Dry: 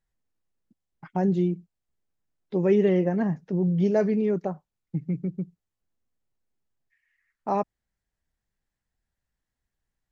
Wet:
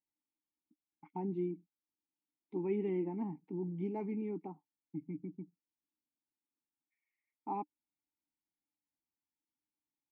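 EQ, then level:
formant filter u
high-frequency loss of the air 140 metres
+1.0 dB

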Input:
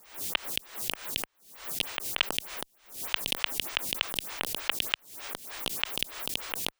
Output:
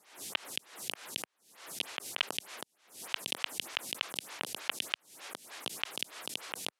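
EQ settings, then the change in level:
high-pass filter 160 Hz 12 dB per octave
low-pass filter 12,000 Hz 24 dB per octave
−5.0 dB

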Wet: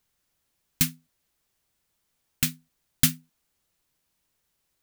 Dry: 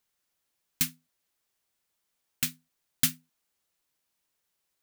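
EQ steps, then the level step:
low-shelf EQ 200 Hz +11 dB
+3.5 dB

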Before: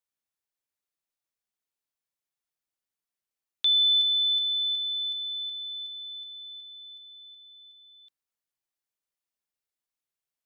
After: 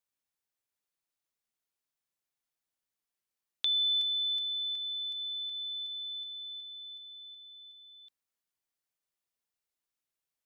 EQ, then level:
dynamic equaliser 3,500 Hz, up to −7 dB, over −36 dBFS
0.0 dB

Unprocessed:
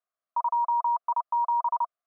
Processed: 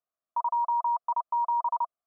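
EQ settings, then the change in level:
low-pass filter 1,200 Hz 12 dB per octave
0.0 dB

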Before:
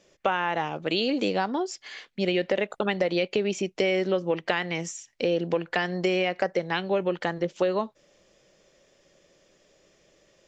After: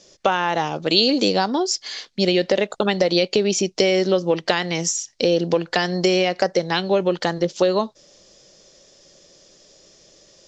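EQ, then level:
high-frequency loss of the air 96 metres
high shelf with overshoot 3,500 Hz +12.5 dB, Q 1.5
+7.0 dB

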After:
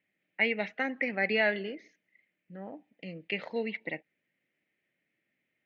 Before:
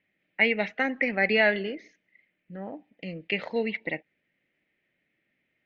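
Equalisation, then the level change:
high-pass filter 95 Hz
−5.0 dB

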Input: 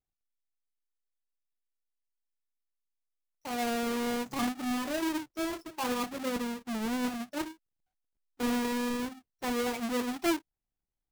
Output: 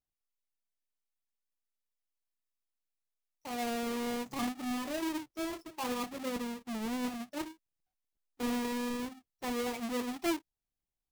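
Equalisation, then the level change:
parametric band 1,500 Hz −4.5 dB 0.22 octaves
−3.5 dB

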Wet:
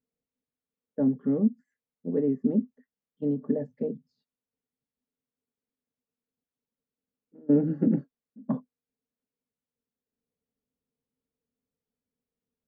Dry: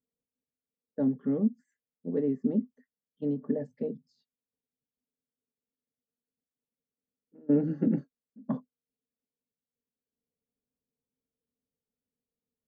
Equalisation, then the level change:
low-pass filter 1,500 Hz 6 dB per octave
+3.0 dB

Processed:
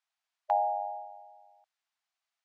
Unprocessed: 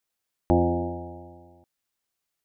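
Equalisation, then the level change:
dynamic equaliser 910 Hz, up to +3 dB, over −38 dBFS, Q 0.83
linear-phase brick-wall high-pass 620 Hz
high-frequency loss of the air 93 metres
0.0 dB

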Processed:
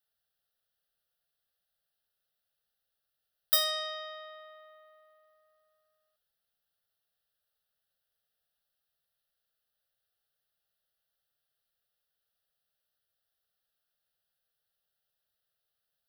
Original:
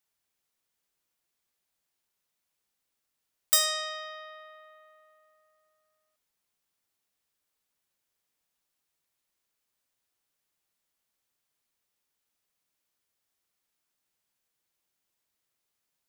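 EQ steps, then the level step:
phaser with its sweep stopped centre 1,500 Hz, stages 8
0.0 dB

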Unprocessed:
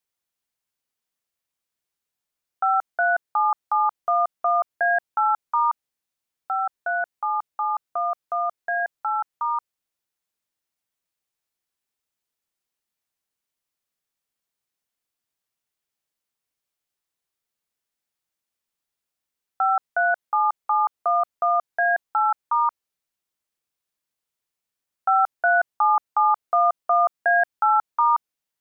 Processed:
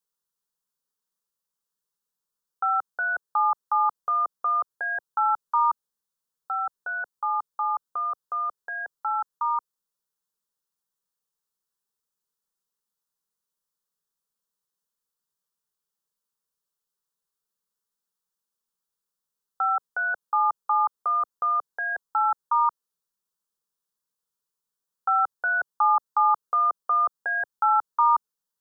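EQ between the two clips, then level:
phaser with its sweep stopped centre 450 Hz, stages 8
0.0 dB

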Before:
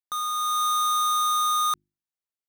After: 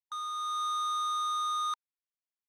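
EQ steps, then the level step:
linear-phase brick-wall high-pass 910 Hz
high-frequency loss of the air 74 metres
−7.5 dB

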